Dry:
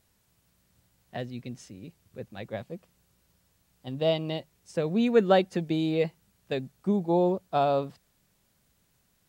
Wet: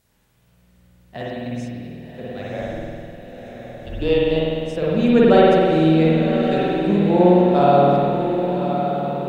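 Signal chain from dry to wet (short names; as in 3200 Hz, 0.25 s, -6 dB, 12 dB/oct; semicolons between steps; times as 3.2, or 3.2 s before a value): 2.61–4.31 frequency shift -170 Hz; diffused feedback echo 1.077 s, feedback 53%, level -7.5 dB; spring tank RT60 2.2 s, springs 50 ms, chirp 55 ms, DRR -6.5 dB; gain +2 dB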